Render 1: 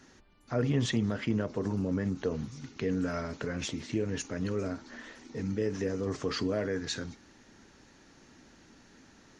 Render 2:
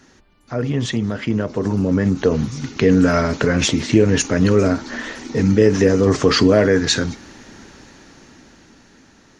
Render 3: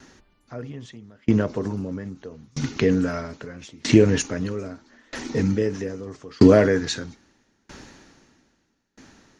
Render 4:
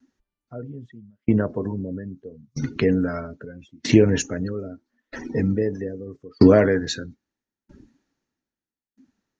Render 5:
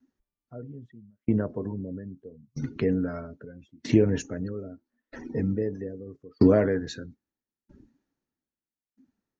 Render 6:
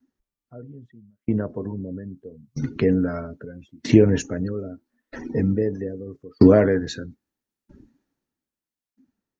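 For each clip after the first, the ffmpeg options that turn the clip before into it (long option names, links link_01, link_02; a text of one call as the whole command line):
ffmpeg -i in.wav -af "dynaudnorm=framelen=310:gausssize=13:maxgain=11.5dB,volume=6.5dB" out.wav
ffmpeg -i in.wav -af "aeval=exprs='val(0)*pow(10,-32*if(lt(mod(0.78*n/s,1),2*abs(0.78)/1000),1-mod(0.78*n/s,1)/(2*abs(0.78)/1000),(mod(0.78*n/s,1)-2*abs(0.78)/1000)/(1-2*abs(0.78)/1000))/20)':channel_layout=same,volume=2.5dB" out.wav
ffmpeg -i in.wav -af "afftdn=noise_reduction=25:noise_floor=-35" out.wav
ffmpeg -i in.wav -af "tiltshelf=frequency=1400:gain=3.5,volume=-8.5dB" out.wav
ffmpeg -i in.wav -af "dynaudnorm=framelen=570:gausssize=7:maxgain=11.5dB" out.wav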